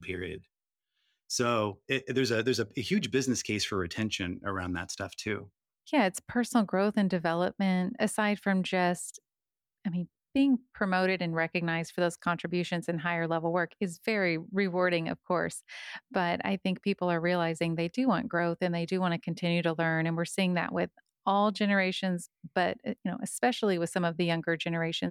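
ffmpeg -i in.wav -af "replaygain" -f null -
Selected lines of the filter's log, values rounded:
track_gain = +10.9 dB
track_peak = 0.146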